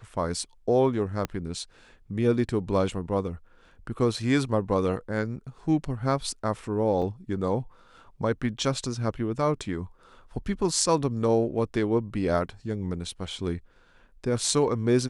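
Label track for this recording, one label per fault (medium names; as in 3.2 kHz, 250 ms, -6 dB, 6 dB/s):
1.250000	1.250000	pop -15 dBFS
7.020000	7.020000	dropout 3.6 ms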